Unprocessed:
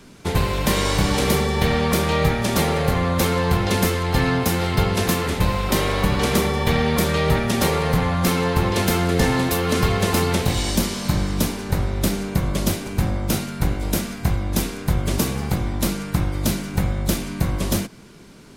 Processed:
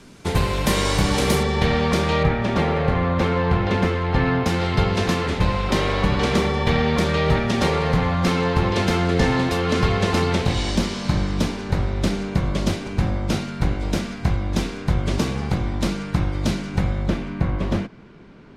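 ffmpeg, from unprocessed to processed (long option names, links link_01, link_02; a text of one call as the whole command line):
ffmpeg -i in.wav -af "asetnsamples=nb_out_samples=441:pad=0,asendcmd='1.43 lowpass f 5700;2.23 lowpass f 2700;4.46 lowpass f 5100;17.06 lowpass f 2400',lowpass=11000" out.wav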